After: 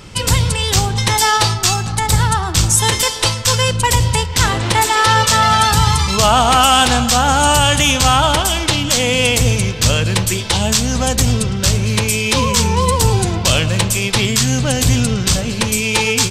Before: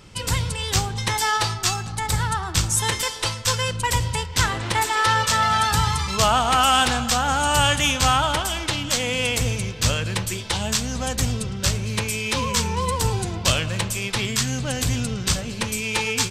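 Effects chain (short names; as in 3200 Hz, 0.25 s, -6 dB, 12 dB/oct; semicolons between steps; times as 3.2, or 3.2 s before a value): dynamic EQ 1600 Hz, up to -4 dB, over -34 dBFS, Q 1; maximiser +11 dB; gain -1 dB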